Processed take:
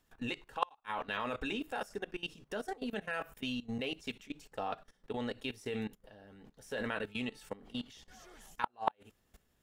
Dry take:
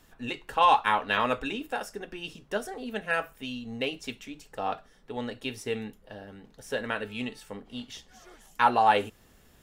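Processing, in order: level quantiser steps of 19 dB; flipped gate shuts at -17 dBFS, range -39 dB; gain +1.5 dB

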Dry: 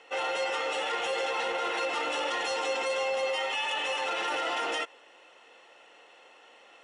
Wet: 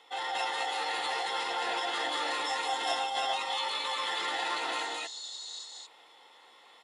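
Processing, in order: spectral repair 4.77–5.61, 2700–7200 Hz before; loudspeakers at several distances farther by 62 m -10 dB, 76 m -2 dB; formant shift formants +4 st; gain -4 dB

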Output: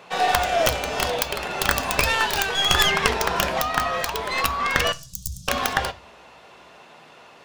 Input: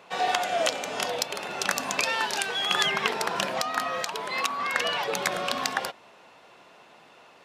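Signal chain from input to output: tracing distortion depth 0.29 ms; 4.92–5.48 elliptic band-stop 130–6200 Hz, stop band 50 dB; on a send: reverb RT60 0.35 s, pre-delay 3 ms, DRR 11 dB; on the sum: gain +5 dB

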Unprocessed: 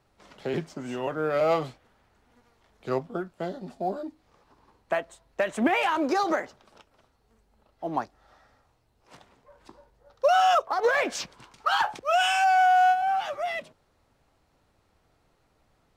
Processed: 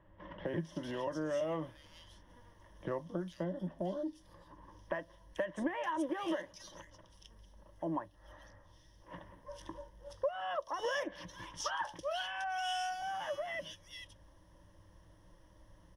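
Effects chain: ripple EQ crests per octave 1.2, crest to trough 14 dB; compressor 3:1, threshold -39 dBFS, peak gain reduction 20 dB; low shelf 130 Hz +9 dB; bands offset in time lows, highs 0.45 s, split 2700 Hz

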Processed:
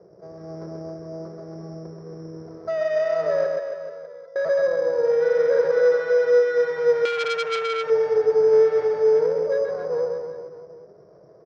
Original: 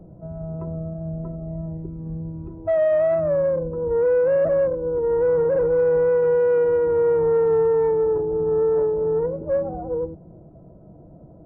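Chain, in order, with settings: minimum comb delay 1.8 ms; 3.46–4.36 resonator 670 Hz, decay 0.18 s, harmonics all, mix 100%; wavefolder -18 dBFS; air absorption 480 m; reverse bouncing-ball echo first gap 0.13 s, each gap 1.1×, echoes 5; careless resampling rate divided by 8×, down filtered, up zero stuff; speaker cabinet 270–2000 Hz, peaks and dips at 270 Hz -10 dB, 420 Hz +8 dB, 870 Hz -8 dB; 7.05–7.9 core saturation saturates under 2400 Hz

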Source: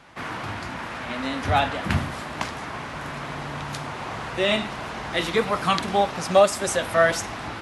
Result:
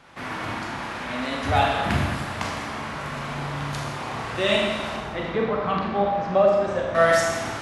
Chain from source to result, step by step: 4.96–6.95 tape spacing loss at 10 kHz 36 dB; Schroeder reverb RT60 1.3 s, combs from 28 ms, DRR -1 dB; gain -2 dB

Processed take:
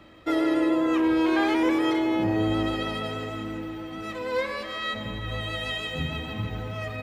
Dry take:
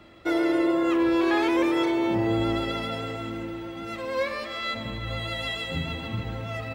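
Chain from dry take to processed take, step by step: speed mistake 25 fps video run at 24 fps

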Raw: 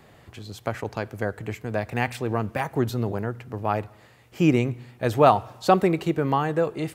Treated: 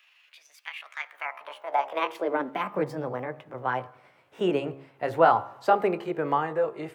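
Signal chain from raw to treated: gliding pitch shift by +7 st ending unshifted; three-band isolator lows -17 dB, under 330 Hz, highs -13 dB, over 2500 Hz; de-hum 68.44 Hz, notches 20; high-pass sweep 2600 Hz -> 100 Hz, 0.8–3.12

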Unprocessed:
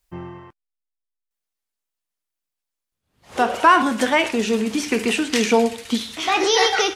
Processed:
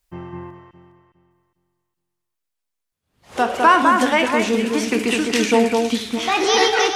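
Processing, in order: echo with dull and thin repeats by turns 0.205 s, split 2400 Hz, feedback 51%, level -3 dB

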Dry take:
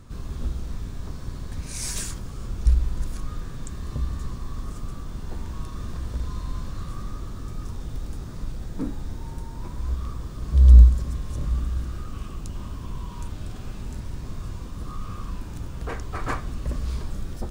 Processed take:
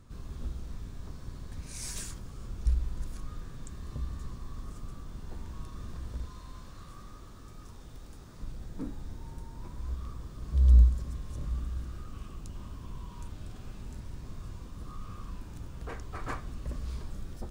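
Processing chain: 6.26–8.4 low shelf 290 Hz -7.5 dB; gain -8.5 dB

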